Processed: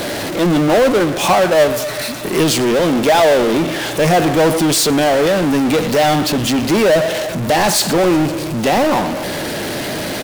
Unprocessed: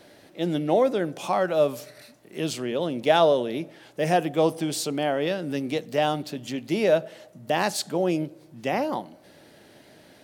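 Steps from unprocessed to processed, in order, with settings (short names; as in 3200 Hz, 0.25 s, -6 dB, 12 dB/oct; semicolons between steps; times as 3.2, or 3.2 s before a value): speakerphone echo 90 ms, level -19 dB; 0.92–2.44 transient shaper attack +8 dB, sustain -9 dB; on a send: thinning echo 0.124 s, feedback 65%, high-pass 790 Hz, level -23.5 dB; on the sum: power-law curve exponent 0.35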